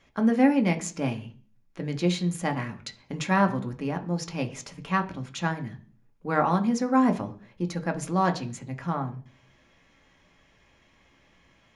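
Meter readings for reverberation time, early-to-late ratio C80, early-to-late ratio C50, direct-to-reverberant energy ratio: 0.40 s, 20.0 dB, 16.0 dB, 5.0 dB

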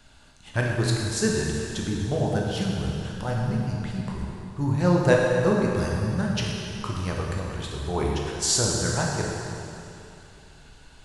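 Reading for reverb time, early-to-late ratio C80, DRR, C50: 2.8 s, 1.0 dB, -2.5 dB, -0.5 dB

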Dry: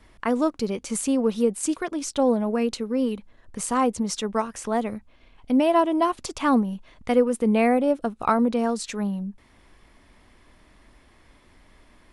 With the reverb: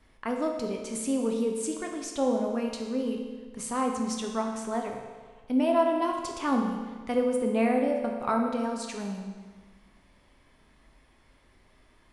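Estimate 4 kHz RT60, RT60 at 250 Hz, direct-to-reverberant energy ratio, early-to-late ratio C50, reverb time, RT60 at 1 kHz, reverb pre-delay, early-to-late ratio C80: 1.4 s, 1.5 s, 1.5 dB, 4.0 dB, 1.5 s, 1.5 s, 8 ms, 5.5 dB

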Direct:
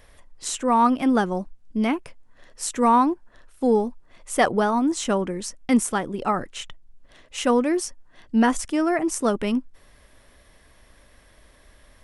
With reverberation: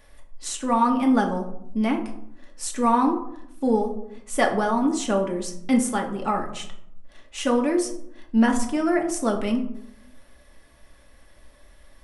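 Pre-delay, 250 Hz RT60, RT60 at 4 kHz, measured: 3 ms, 1.0 s, 0.35 s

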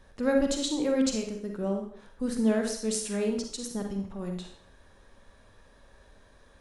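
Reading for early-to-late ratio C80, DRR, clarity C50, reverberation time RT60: 9.5 dB, 3.0 dB, 5.0 dB, 0.55 s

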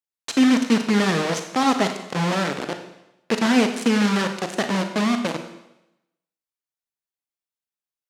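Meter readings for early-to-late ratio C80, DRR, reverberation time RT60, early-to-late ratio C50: 10.5 dB, 6.0 dB, 0.90 s, 8.0 dB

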